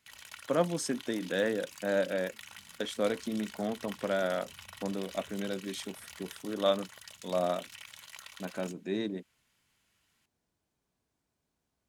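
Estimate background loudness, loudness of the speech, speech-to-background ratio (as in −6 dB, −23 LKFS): −47.5 LKFS, −34.0 LKFS, 13.5 dB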